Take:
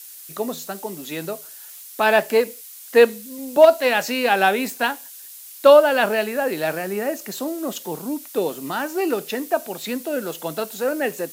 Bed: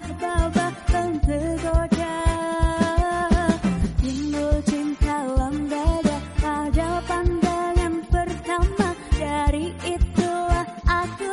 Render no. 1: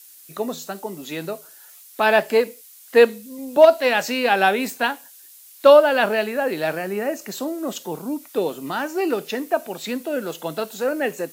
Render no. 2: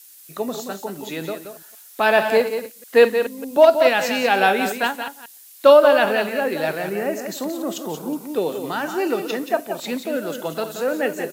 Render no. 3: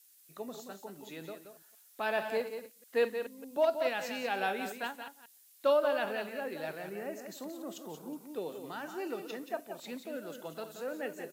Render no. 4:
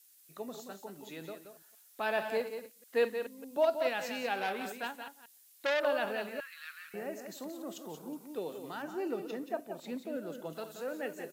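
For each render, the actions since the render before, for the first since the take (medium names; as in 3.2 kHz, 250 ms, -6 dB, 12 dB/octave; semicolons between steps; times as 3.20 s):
noise print and reduce 6 dB
chunks repeated in reverse 121 ms, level -11.5 dB; delay 177 ms -8.5 dB
trim -16 dB
4.34–5.85 s: transformer saturation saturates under 2 kHz; 6.40–6.94 s: elliptic high-pass 1.2 kHz; 8.82–10.53 s: tilt shelf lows +4.5 dB, about 800 Hz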